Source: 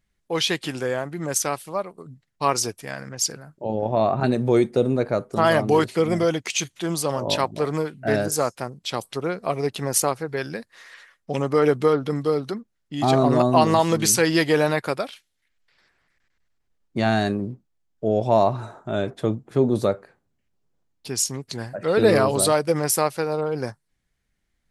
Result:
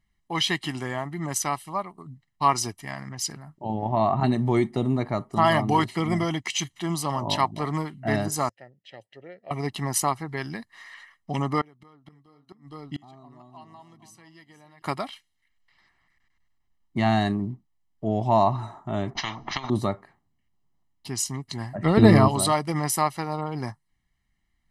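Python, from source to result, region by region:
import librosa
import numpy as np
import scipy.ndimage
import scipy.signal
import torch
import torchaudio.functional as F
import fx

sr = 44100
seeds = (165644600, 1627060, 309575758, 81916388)

y = fx.chain(x, sr, fx.vowel_filter(vowel='e'),
    fx.peak_eq(hz=110.0, db=13.0, octaves=0.81), at=(8.49, 9.51))
y = fx.chain(y, sr, fx.echo_single(ms=463, db=-13.0),
    fx.gate_flip(shuts_db=-19.0, range_db=-30), at=(11.61, 14.82))
y = fx.chain(y, sr, fx.steep_lowpass(hz=6300.0, slope=96),
    fx.over_compress(threshold_db=-20.0, ratio=-0.5),
    fx.spectral_comp(ratio=10.0), at=(19.15, 19.7))
y = fx.chain(y, sr, fx.low_shelf(hz=370.0, db=10.0),
    fx.transient(attack_db=5, sustain_db=-1), at=(21.75, 22.28))
y = fx.bass_treble(y, sr, bass_db=-2, treble_db=-5)
y = y + 0.81 * np.pad(y, (int(1.0 * sr / 1000.0), 0))[:len(y)]
y = y * librosa.db_to_amplitude(-2.0)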